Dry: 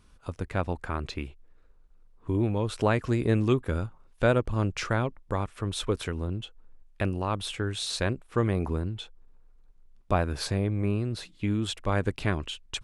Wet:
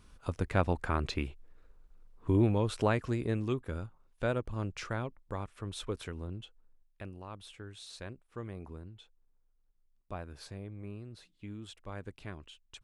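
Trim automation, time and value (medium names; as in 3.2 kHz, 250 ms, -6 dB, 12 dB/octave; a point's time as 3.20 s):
2.39 s +0.5 dB
3.40 s -9 dB
6.44 s -9 dB
7.04 s -16.5 dB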